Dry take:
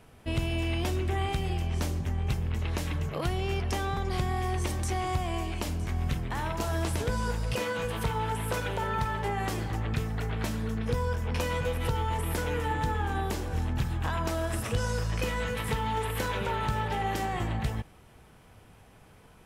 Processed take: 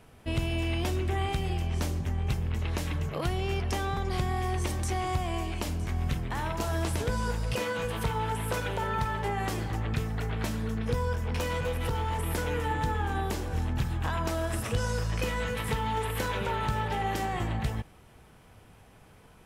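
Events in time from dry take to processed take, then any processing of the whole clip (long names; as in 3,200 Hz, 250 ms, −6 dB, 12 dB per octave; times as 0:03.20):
0:11.19–0:12.22: hard clipping −25 dBFS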